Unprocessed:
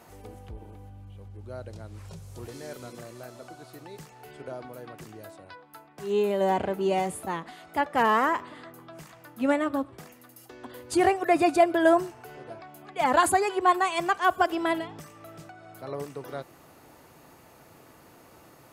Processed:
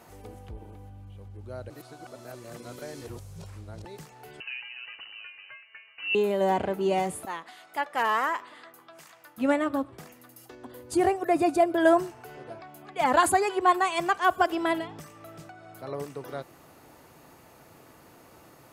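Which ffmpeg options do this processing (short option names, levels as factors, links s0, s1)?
-filter_complex "[0:a]asettb=1/sr,asplit=3[s0][s1][s2];[s0]atrim=end=4.404[s3];[s1]atrim=start=4.4:end=6.15,asetpts=PTS-STARTPTS,afade=t=in:d=0.004:c=qsin,afade=t=out:st=1.746:d=0.004:c=qsin,lowpass=f=2600:t=q:w=0.5098,lowpass=f=2600:t=q:w=0.6013,lowpass=f=2600:t=q:w=0.9,lowpass=f=2600:t=q:w=2.563,afreqshift=-3100[s4];[s2]atrim=start=6.146[s5];[s3][s4]acrossfade=d=0.004:c1=hsin:c2=qsin[s6];[s6][s5]acrossfade=d=0.004:c1=qsin:c2=hsin,asettb=1/sr,asplit=3[s7][s8][s9];[s7]atrim=end=7.254[s10];[s8]atrim=start=7.25:end=9.38,asetpts=PTS-STARTPTS,afade=t=in:d=0.004:c=qsin,afade=t=out:st=2.126:d=0.004:c=qsin,highpass=f=940:p=1[s11];[s9]atrim=start=9.376[s12];[s10][s11]acrossfade=d=0.004:c1=hsin:c2=qsin[s13];[s13][s12]acrossfade=d=0.004:c1=qsin:c2=hsin,asettb=1/sr,asplit=3[s14][s15][s16];[s14]atrim=end=10.554[s17];[s15]atrim=start=10.55:end=11.78,asetpts=PTS-STARTPTS,afade=t=in:d=0.004:c=qsin,afade=t=out:st=1.226:d=0.004:c=qsin,equalizer=f=2500:w=0.42:g=-6.5[s18];[s16]atrim=start=11.776[s19];[s17][s18]acrossfade=d=0.004:c1=hsin:c2=qsin[s20];[s20][s19]acrossfade=d=0.004:c1=qsin:c2=hsin,asplit=3[s21][s22][s23];[s21]atrim=end=1.702[s24];[s22]atrim=start=1.698:end=3.852,asetpts=PTS-STARTPTS,areverse[s25];[s23]atrim=start=3.848[s26];[s24][s25]acrossfade=d=0.004:c1=hsin:c2=hsin[s27];[s27][s26]acrossfade=d=0.004:c1=hsin:c2=hsin"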